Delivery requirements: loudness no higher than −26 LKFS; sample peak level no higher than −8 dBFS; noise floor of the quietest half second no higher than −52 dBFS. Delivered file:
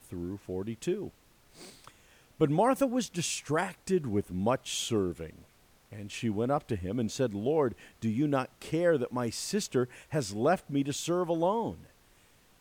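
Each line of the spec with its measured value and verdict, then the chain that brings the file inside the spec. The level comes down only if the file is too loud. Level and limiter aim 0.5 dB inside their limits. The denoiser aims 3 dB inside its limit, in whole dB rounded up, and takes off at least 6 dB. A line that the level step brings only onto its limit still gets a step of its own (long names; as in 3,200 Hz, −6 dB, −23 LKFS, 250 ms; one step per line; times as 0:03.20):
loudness −31.0 LKFS: in spec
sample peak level −12.5 dBFS: in spec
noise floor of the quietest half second −62 dBFS: in spec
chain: no processing needed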